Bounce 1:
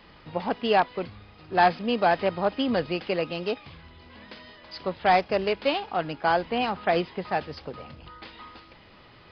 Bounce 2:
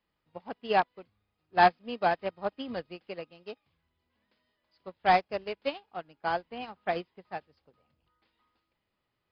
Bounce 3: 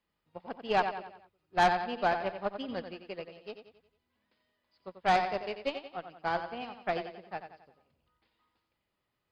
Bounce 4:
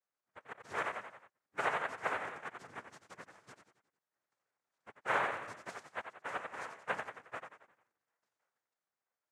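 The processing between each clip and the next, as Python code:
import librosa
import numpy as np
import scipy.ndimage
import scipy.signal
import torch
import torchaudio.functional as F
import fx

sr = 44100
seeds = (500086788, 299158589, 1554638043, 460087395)

y1 = fx.upward_expand(x, sr, threshold_db=-36.0, expansion=2.5)
y2 = fx.echo_feedback(y1, sr, ms=90, feedback_pct=46, wet_db=-9)
y2 = fx.tube_stage(y2, sr, drive_db=18.0, bias=0.45)
y3 = 10.0 ** (-29.0 / 20.0) * np.tanh(y2 / 10.0 ** (-29.0 / 20.0))
y3 = fx.vowel_filter(y3, sr, vowel='a')
y3 = fx.noise_vocoder(y3, sr, seeds[0], bands=3)
y3 = y3 * 10.0 ** (1.5 / 20.0)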